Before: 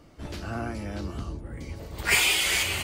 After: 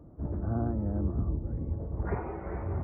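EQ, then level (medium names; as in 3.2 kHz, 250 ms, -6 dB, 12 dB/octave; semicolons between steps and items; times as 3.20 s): Gaussian low-pass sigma 8.8 samples; high-pass 45 Hz; bass shelf 240 Hz +6.5 dB; 0.0 dB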